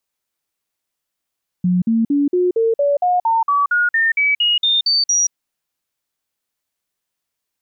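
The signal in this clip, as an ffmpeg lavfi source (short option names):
-f lavfi -i "aevalsrc='0.237*clip(min(mod(t,0.23),0.18-mod(t,0.23))/0.005,0,1)*sin(2*PI*180*pow(2,floor(t/0.23)/3)*mod(t,0.23))':d=3.68:s=44100"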